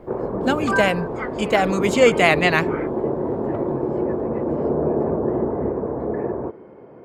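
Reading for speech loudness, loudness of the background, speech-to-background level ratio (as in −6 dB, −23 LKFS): −19.5 LKFS, −24.0 LKFS, 4.5 dB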